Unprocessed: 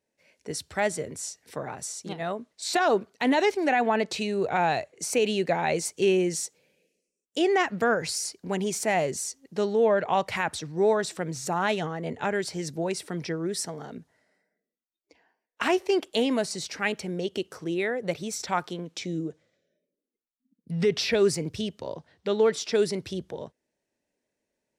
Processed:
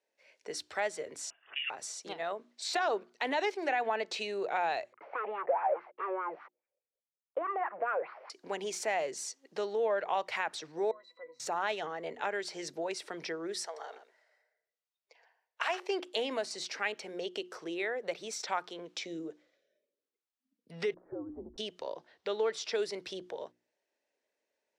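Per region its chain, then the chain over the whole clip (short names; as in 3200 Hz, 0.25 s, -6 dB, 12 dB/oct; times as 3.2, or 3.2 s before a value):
1.3–1.7 block floating point 7-bit + resonant low shelf 500 Hz -12 dB, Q 3 + inverted band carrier 3500 Hz
4.93–8.3 sample leveller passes 5 + elliptic band-pass 120–2300 Hz, stop band 50 dB + wah 4.8 Hz 540–1300 Hz, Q 5.1
10.91–11.4 HPF 450 Hz + octave resonator B, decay 0.12 s
13.64–15.8 HPF 480 Hz 24 dB/oct + echo 0.122 s -12 dB
20.94–21.58 compressor, threshold -25 dBFS + frequency shift -96 Hz + Gaussian blur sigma 11 samples
whole clip: three-band isolator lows -22 dB, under 360 Hz, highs -12 dB, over 6400 Hz; notches 60/120/180/240/300/360 Hz; compressor 1.5:1, threshold -39 dBFS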